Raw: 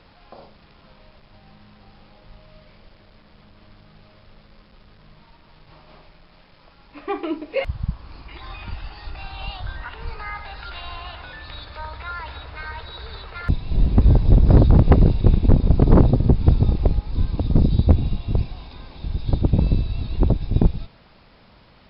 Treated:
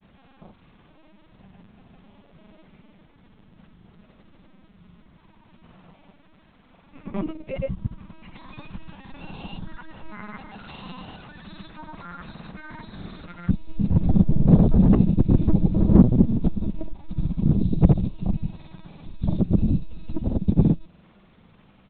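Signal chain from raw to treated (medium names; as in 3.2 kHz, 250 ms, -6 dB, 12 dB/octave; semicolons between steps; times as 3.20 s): LPC vocoder at 8 kHz pitch kept; peaking EQ 190 Hz +12.5 dB 0.8 oct; granulator, pitch spread up and down by 0 st; dynamic bell 1.7 kHz, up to -4 dB, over -42 dBFS, Q 0.84; trim -5 dB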